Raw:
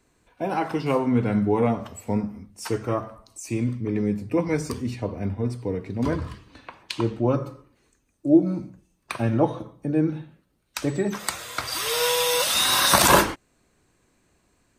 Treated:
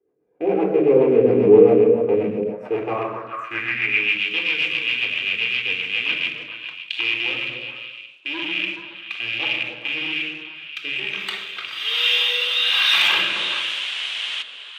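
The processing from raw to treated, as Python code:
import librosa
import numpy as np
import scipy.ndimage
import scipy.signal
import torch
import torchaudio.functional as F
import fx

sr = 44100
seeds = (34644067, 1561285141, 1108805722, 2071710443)

p1 = fx.rattle_buzz(x, sr, strikes_db=-35.0, level_db=-16.0)
p2 = fx.low_shelf(p1, sr, hz=65.0, db=-8.0)
p3 = fx.room_shoebox(p2, sr, seeds[0], volume_m3=2600.0, walls='furnished', distance_m=3.8)
p4 = fx.rotary_switch(p3, sr, hz=7.5, then_hz=1.2, switch_at_s=6.04)
p5 = fx.spec_paint(p4, sr, seeds[1], shape='noise', start_s=13.16, length_s=1.27, low_hz=220.0, high_hz=10000.0, level_db=-29.0)
p6 = fx.band_shelf(p5, sr, hz=7000.0, db=-12.5, octaves=1.7)
p7 = fx.leveller(p6, sr, passes=2)
p8 = p7 + fx.echo_stepped(p7, sr, ms=141, hz=180.0, octaves=1.4, feedback_pct=70, wet_db=-1.0, dry=0)
p9 = fx.filter_sweep_bandpass(p8, sr, from_hz=440.0, to_hz=3100.0, start_s=2.42, end_s=4.22, q=3.7)
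y = p9 * librosa.db_to_amplitude(5.5)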